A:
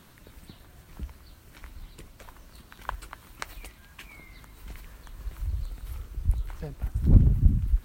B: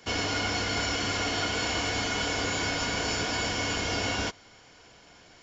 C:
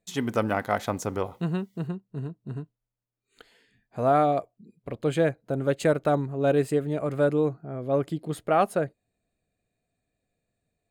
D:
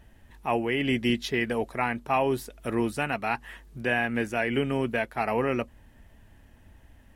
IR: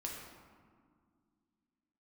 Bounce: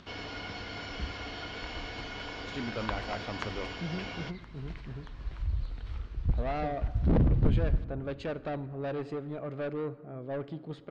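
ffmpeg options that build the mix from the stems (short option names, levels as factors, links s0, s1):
-filter_complex "[0:a]aeval=exprs='0.141*(abs(mod(val(0)/0.141+3,4)-2)-1)':c=same,volume=0.841,asplit=2[s0][s1];[s1]volume=0.282[s2];[1:a]volume=0.282[s3];[2:a]asoftclip=type=tanh:threshold=0.0708,adelay=2400,volume=0.376,asplit=2[s4][s5];[s5]volume=0.282[s6];[4:a]atrim=start_sample=2205[s7];[s2][s6]amix=inputs=2:normalize=0[s8];[s8][s7]afir=irnorm=-1:irlink=0[s9];[s0][s3][s4][s9]amix=inputs=4:normalize=0,lowpass=f=4600:w=0.5412,lowpass=f=4600:w=1.3066,acompressor=mode=upward:threshold=0.002:ratio=2.5"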